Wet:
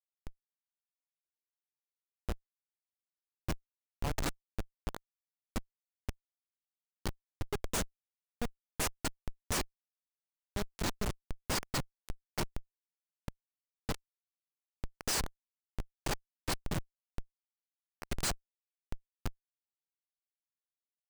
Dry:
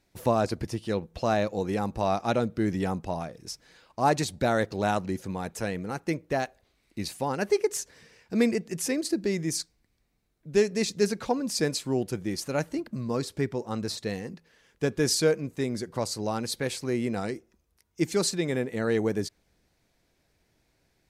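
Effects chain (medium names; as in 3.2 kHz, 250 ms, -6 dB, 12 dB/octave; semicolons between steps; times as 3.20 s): pre-emphasis filter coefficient 0.9; Schmitt trigger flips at -30.5 dBFS; trim +10.5 dB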